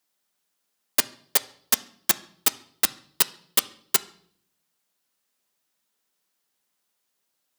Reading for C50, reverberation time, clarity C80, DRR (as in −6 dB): 19.0 dB, 0.60 s, 22.0 dB, 11.0 dB